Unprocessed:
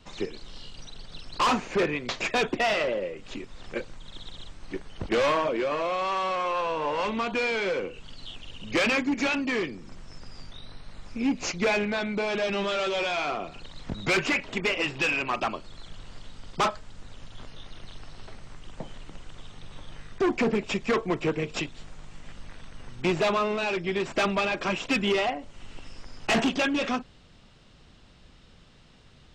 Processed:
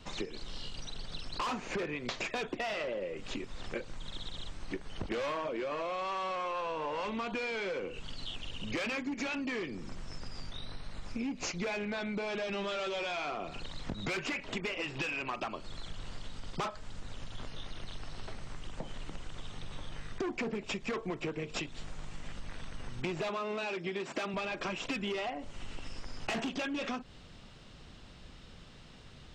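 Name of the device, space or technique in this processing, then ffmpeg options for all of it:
serial compression, leveller first: -filter_complex "[0:a]asettb=1/sr,asplit=3[s0][s1][s2];[s0]atrim=end=23.294[s3];[s1]atrim=start=23.29:end=24.34,asetpts=PTS-STARTPTS,afade=t=in:d=0.004:c=qsin,afade=t=out:st=1.046:d=0.004:c=qsin,highpass=170[s4];[s2]atrim=start=24.336[s5];[s3][s4]acrossfade=d=0.004:c1=hsin:c2=qsin[s6];[s6][s5]acrossfade=d=0.004:c1=qsin:c2=hsin,acompressor=threshold=0.0316:ratio=2,acompressor=threshold=0.0158:ratio=5,volume=1.26"

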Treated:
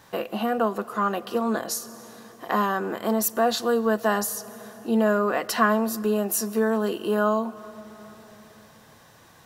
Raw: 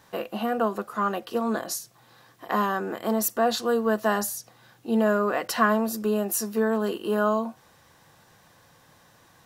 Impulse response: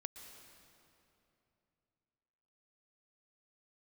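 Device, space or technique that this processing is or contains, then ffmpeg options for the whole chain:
compressed reverb return: -filter_complex "[0:a]asplit=2[s0][s1];[1:a]atrim=start_sample=2205[s2];[s1][s2]afir=irnorm=-1:irlink=0,acompressor=threshold=0.0158:ratio=6,volume=0.891[s3];[s0][s3]amix=inputs=2:normalize=0"

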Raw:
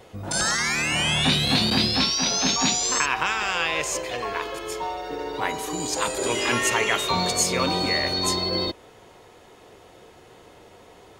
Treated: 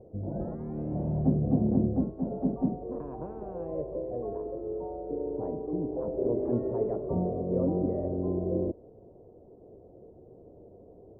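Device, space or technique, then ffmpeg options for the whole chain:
under water: -af "lowpass=f=480:w=0.5412,lowpass=f=480:w=1.3066,equalizer=f=650:t=o:w=0.47:g=6.5"

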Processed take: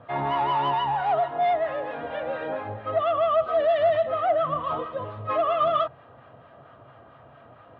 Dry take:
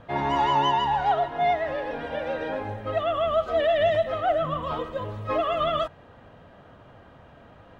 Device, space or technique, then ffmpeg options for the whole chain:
guitar amplifier with harmonic tremolo: -filter_complex "[0:a]acrossover=split=850[s0][s1];[s0]aeval=exprs='val(0)*(1-0.5/2+0.5/2*cos(2*PI*4.4*n/s))':c=same[s2];[s1]aeval=exprs='val(0)*(1-0.5/2-0.5/2*cos(2*PI*4.4*n/s))':c=same[s3];[s2][s3]amix=inputs=2:normalize=0,asoftclip=type=tanh:threshold=0.0944,highpass=100,equalizer=f=130:t=q:w=4:g=8,equalizer=f=180:t=q:w=4:g=-8,equalizer=f=670:t=q:w=4:g=6,equalizer=f=1200:t=q:w=4:g=8,lowpass=f=3800:w=0.5412,lowpass=f=3800:w=1.3066"

